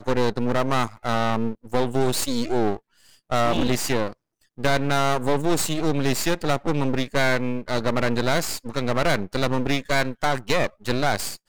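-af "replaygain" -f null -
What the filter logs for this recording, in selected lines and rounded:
track_gain = +5.1 dB
track_peak = 0.239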